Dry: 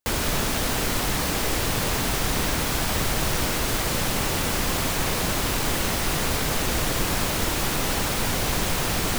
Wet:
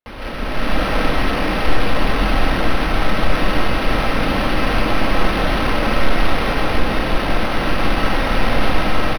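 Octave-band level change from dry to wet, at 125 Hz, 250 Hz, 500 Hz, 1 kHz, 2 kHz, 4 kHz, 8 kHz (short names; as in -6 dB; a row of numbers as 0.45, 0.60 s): +4.0, +7.5, +7.5, +8.0, +6.5, +1.5, -13.5 dB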